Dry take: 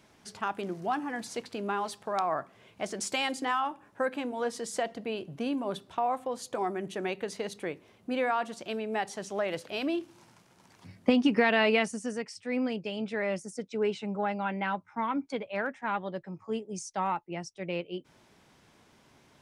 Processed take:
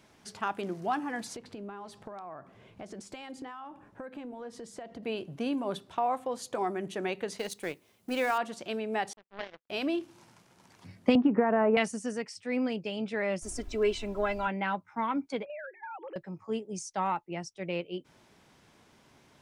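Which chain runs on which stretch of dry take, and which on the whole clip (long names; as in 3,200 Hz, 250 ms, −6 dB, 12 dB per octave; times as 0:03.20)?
0:01.36–0:05.03: downward compressor 4 to 1, threshold −43 dBFS + spectral tilt −2 dB per octave
0:07.38–0:08.38: mu-law and A-law mismatch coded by A + high-shelf EQ 4,000 Hz +11.5 dB
0:09.13–0:09.70: variable-slope delta modulation 16 kbit/s + power curve on the samples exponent 3
0:11.15–0:11.77: low-pass filter 1,300 Hz 24 dB per octave + multiband upward and downward compressor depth 100%
0:13.41–0:14.46: high-shelf EQ 6,800 Hz +10 dB + background noise brown −47 dBFS + comb filter 3 ms, depth 76%
0:15.45–0:16.16: three sine waves on the formant tracks + mains-hum notches 50/100/150/200/250/300/350/400 Hz + downward compressor 10 to 1, threshold −38 dBFS
whole clip: no processing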